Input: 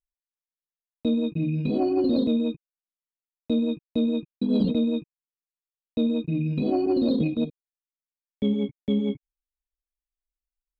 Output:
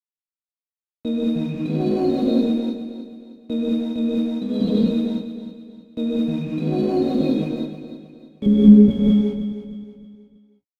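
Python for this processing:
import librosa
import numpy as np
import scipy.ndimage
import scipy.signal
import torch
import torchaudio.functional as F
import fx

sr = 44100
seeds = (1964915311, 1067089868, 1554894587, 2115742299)

y = fx.tilt_eq(x, sr, slope=-4.5, at=(8.46, 8.9))
y = np.sign(y) * np.maximum(np.abs(y) - 10.0 ** (-45.5 / 20.0), 0.0)
y = fx.echo_feedback(y, sr, ms=314, feedback_pct=39, wet_db=-11.0)
y = fx.rev_gated(y, sr, seeds[0], gate_ms=240, shape='rising', drr_db=-4.0)
y = y * 10.0 ** (-2.0 / 20.0)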